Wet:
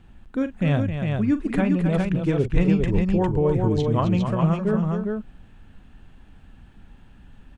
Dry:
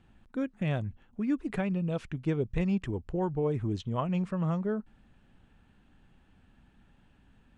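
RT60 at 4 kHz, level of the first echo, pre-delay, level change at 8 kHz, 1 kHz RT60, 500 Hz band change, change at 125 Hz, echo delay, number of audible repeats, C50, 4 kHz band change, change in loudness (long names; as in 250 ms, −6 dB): no reverb audible, −12.5 dB, no reverb audible, can't be measured, no reverb audible, +9.5 dB, +10.5 dB, 42 ms, 3, no reverb audible, +9.0 dB, +9.5 dB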